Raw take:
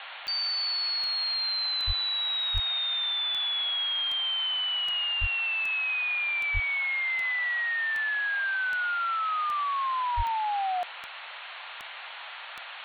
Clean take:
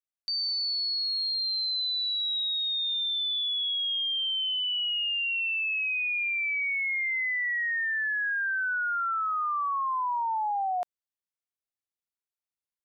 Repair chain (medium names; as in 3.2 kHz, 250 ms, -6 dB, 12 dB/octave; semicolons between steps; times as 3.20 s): de-click; band-stop 1.4 kHz, Q 30; de-plosive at 1.86/2.53/5.20/6.53/10.16 s; noise print and reduce 30 dB